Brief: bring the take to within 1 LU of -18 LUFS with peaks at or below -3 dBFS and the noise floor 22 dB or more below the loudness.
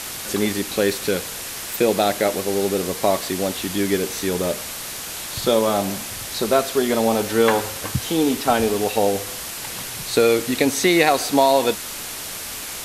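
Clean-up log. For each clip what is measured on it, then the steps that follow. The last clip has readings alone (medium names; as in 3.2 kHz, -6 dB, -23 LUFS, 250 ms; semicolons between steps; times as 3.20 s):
noise floor -32 dBFS; noise floor target -43 dBFS; loudness -21.0 LUFS; peak level -2.5 dBFS; loudness target -18.0 LUFS
-> noise reduction 11 dB, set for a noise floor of -32 dBFS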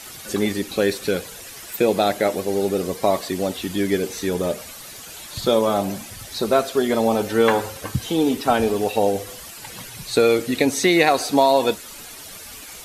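noise floor -39 dBFS; noise floor target -43 dBFS
-> noise reduction 6 dB, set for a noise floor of -39 dBFS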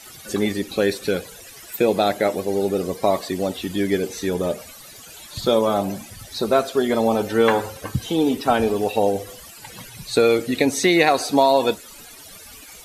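noise floor -42 dBFS; noise floor target -43 dBFS
-> noise reduction 6 dB, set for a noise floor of -42 dBFS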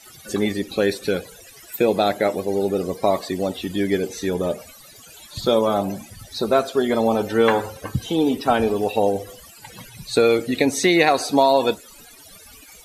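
noise floor -46 dBFS; loudness -21.0 LUFS; peak level -2.5 dBFS; loudness target -18.0 LUFS
-> trim +3 dB; peak limiter -3 dBFS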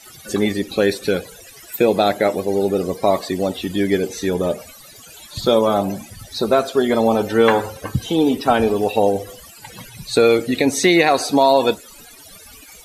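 loudness -18.0 LUFS; peak level -3.0 dBFS; noise floor -43 dBFS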